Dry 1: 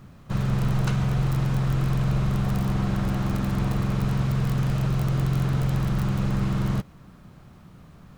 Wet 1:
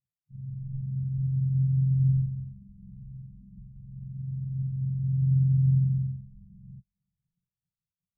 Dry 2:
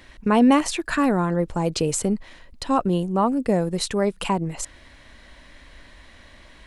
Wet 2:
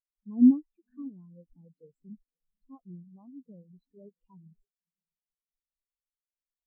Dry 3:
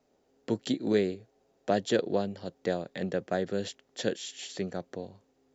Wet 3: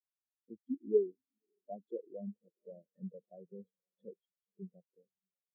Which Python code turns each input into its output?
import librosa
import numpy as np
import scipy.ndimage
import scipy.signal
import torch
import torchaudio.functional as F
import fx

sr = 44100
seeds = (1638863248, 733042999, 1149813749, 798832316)

p1 = fx.over_compress(x, sr, threshold_db=-33.0, ratio=-1.0)
p2 = x + (p1 * librosa.db_to_amplitude(-1.0))
p3 = fx.echo_diffused(p2, sr, ms=553, feedback_pct=59, wet_db=-11.5)
p4 = fx.spectral_expand(p3, sr, expansion=4.0)
y = p4 * librosa.db_to_amplitude(-6.0)